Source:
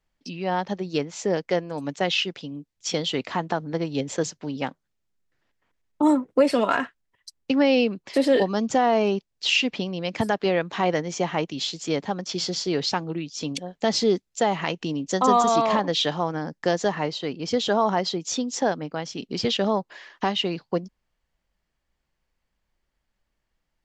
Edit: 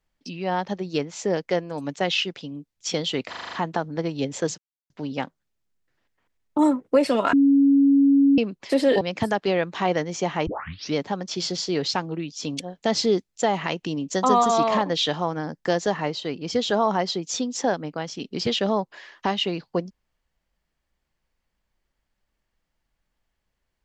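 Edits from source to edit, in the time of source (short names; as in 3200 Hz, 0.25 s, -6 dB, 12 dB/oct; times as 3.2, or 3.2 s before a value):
3.29 stutter 0.04 s, 7 plays
4.34 insert silence 0.32 s
6.77–7.82 bleep 278 Hz -13 dBFS
8.45–9.99 cut
11.45 tape start 0.48 s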